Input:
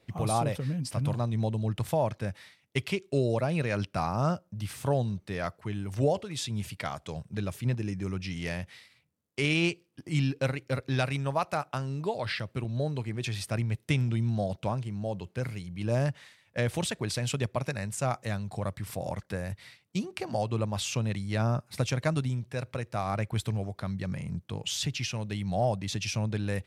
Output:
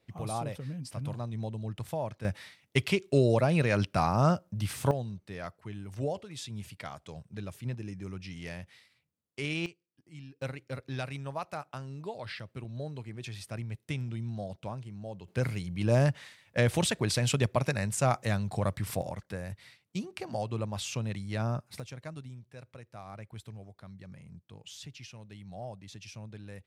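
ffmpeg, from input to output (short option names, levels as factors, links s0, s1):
-af "asetnsamples=n=441:p=0,asendcmd='2.25 volume volume 3dB;4.91 volume volume -7dB;9.66 volume volume -20dB;10.42 volume volume -8dB;15.28 volume volume 3dB;19.02 volume volume -4dB;21.8 volume volume -14.5dB',volume=0.447"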